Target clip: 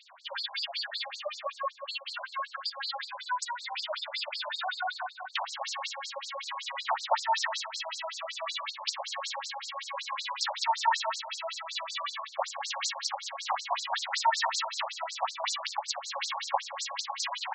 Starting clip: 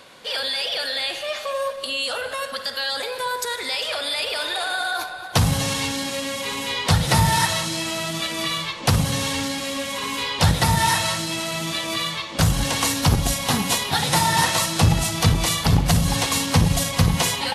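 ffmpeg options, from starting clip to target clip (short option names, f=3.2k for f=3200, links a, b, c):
-af "tiltshelf=f=1.5k:g=3.5,afftfilt=real='re*between(b*sr/1024,770*pow(5900/770,0.5+0.5*sin(2*PI*5.3*pts/sr))/1.41,770*pow(5900/770,0.5+0.5*sin(2*PI*5.3*pts/sr))*1.41)':imag='im*between(b*sr/1024,770*pow(5900/770,0.5+0.5*sin(2*PI*5.3*pts/sr))/1.41,770*pow(5900/770,0.5+0.5*sin(2*PI*5.3*pts/sr))*1.41)':win_size=1024:overlap=0.75,volume=-2dB"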